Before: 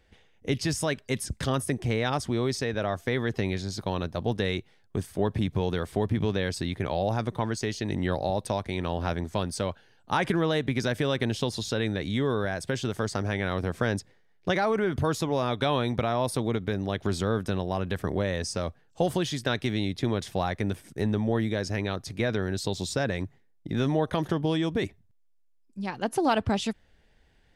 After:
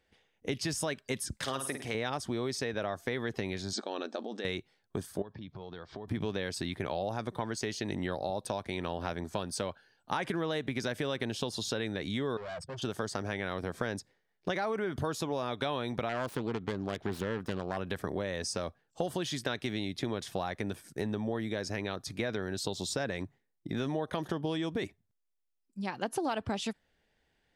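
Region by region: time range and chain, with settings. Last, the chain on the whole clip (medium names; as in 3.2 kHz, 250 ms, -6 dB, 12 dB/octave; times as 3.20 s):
1.37–1.95 s: bass shelf 350 Hz -11.5 dB + flutter echo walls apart 9 m, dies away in 0.4 s
3.73–4.45 s: band-stop 1 kHz, Q 6.6 + compressor with a negative ratio -32 dBFS + brick-wall FIR band-pass 200–8700 Hz
5.22–6.08 s: steep low-pass 5.6 kHz + compression 5:1, threshold -38 dBFS + tape noise reduction on one side only encoder only
12.37–12.82 s: spectral contrast enhancement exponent 2.3 + hard clipper -36.5 dBFS + distance through air 58 m
16.09–17.77 s: self-modulated delay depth 0.34 ms + treble shelf 5 kHz -11 dB
whole clip: spectral noise reduction 7 dB; bass shelf 120 Hz -11 dB; compression 3:1, threshold -31 dBFS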